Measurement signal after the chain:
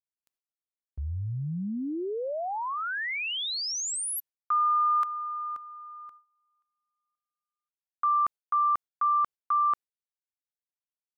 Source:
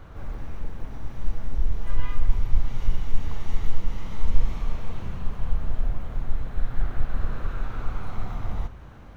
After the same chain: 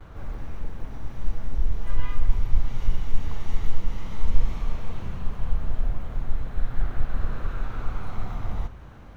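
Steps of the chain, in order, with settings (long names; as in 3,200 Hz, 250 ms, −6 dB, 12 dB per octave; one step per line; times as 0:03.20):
noise gate with hold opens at −39 dBFS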